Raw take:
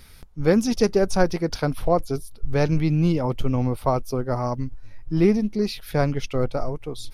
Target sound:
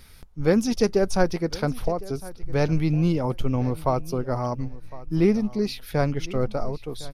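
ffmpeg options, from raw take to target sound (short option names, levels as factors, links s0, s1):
-filter_complex "[0:a]asettb=1/sr,asplit=3[s0][s1][s2];[s0]atrim=end=1.884[s3];[s1]atrim=start=1.88:end=2.53,asetpts=PTS-STARTPTS,afade=t=in:d=0.004:c=qsin,afade=t=out:st=0.646:d=0.004:c=qsin,acompressor=threshold=0.0891:ratio=6[s4];[s2]atrim=start=2.526[s5];[s3][s4]acrossfade=d=0.004:c1=hsin:c2=qsin[s6];[s6][s5]acrossfade=d=0.004:c1=qsin:c2=hsin,asplit=2[s7][s8];[s8]aecho=0:1:1058|2116:0.112|0.0191[s9];[s7][s9]amix=inputs=2:normalize=0,volume=0.841"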